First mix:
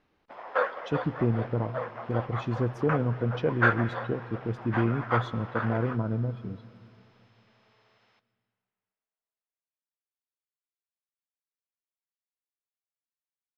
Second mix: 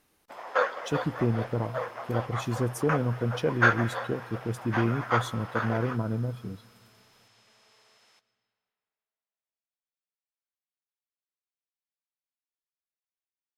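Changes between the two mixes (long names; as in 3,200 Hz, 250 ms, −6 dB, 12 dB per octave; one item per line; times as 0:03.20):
speech: send −9.0 dB
master: remove high-frequency loss of the air 250 metres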